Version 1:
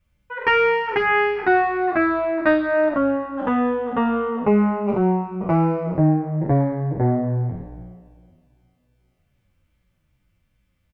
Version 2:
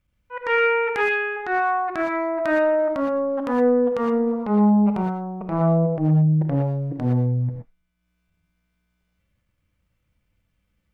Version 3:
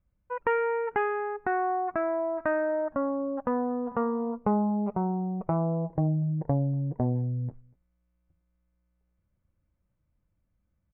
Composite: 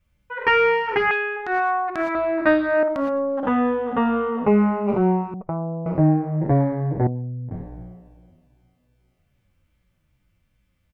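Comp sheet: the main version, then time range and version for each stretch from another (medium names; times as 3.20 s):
1
1.11–2.15 s: from 2
2.83–3.43 s: from 2
5.34–5.86 s: from 3
7.07–7.51 s: from 3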